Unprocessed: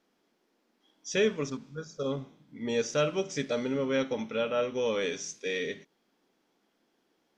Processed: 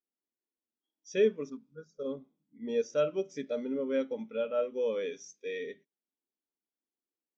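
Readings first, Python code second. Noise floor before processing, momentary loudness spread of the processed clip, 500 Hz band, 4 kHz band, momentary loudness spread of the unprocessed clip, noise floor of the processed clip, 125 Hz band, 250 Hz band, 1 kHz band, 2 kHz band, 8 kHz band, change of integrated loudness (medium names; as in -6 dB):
-75 dBFS, 15 LU, -1.0 dB, -11.0 dB, 12 LU, under -85 dBFS, -11.5 dB, -4.0 dB, -8.0 dB, -9.0 dB, -12.0 dB, -2.0 dB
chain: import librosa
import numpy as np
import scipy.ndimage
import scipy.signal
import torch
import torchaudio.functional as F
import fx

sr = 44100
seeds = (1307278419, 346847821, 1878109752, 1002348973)

y = fx.peak_eq(x, sr, hz=130.0, db=-11.5, octaves=0.3)
y = fx.spectral_expand(y, sr, expansion=1.5)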